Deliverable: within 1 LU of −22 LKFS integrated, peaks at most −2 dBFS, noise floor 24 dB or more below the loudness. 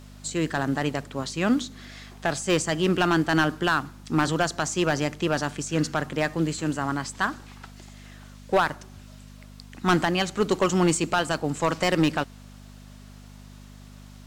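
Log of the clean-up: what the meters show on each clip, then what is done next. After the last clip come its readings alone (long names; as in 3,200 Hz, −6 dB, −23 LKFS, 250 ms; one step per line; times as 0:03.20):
share of clipped samples 0.7%; peaks flattened at −14.0 dBFS; mains hum 50 Hz; hum harmonics up to 250 Hz; level of the hum −44 dBFS; integrated loudness −25.5 LKFS; sample peak −14.0 dBFS; target loudness −22.0 LKFS
→ clipped peaks rebuilt −14 dBFS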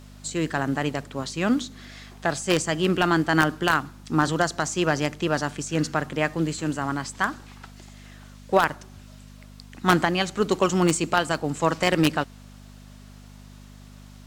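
share of clipped samples 0.0%; mains hum 50 Hz; hum harmonics up to 250 Hz; level of the hum −44 dBFS
→ hum removal 50 Hz, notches 5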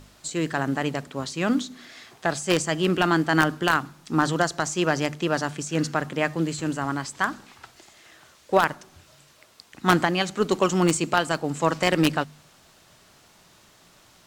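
mains hum none found; integrated loudness −24.5 LKFS; sample peak −5.0 dBFS; target loudness −22.0 LKFS
→ level +2.5 dB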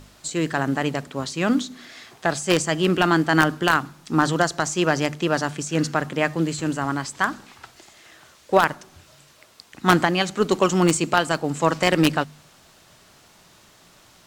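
integrated loudness −22.0 LKFS; sample peak −2.5 dBFS; background noise floor −54 dBFS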